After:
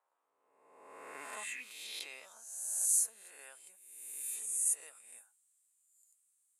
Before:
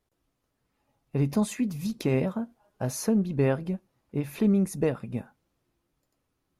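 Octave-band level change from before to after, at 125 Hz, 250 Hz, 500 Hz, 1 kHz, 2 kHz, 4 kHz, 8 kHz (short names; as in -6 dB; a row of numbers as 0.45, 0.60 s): under -40 dB, under -40 dB, -28.0 dB, -11.5 dB, -5.5 dB, -2.5 dB, +9.0 dB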